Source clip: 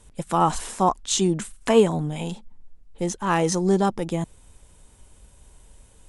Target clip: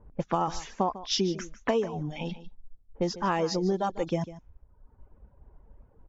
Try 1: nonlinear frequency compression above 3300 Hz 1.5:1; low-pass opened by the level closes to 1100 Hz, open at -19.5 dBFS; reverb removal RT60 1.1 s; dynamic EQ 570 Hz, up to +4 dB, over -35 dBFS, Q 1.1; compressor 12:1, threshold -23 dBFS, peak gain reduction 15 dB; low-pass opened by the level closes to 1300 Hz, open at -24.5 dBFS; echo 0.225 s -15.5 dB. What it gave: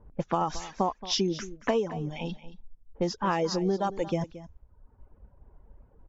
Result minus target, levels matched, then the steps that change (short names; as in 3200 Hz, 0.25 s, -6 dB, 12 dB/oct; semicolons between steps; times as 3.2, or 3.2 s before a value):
echo 76 ms late
change: echo 0.149 s -15.5 dB